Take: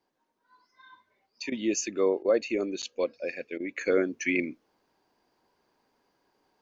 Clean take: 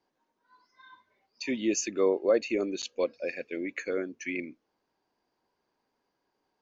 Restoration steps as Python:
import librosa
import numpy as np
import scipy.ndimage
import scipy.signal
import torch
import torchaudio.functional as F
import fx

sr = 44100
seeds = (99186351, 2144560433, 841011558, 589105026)

y = fx.fix_interpolate(x, sr, at_s=(1.5, 2.23, 3.58), length_ms=18.0)
y = fx.gain(y, sr, db=fx.steps((0.0, 0.0), (3.81, -7.0)))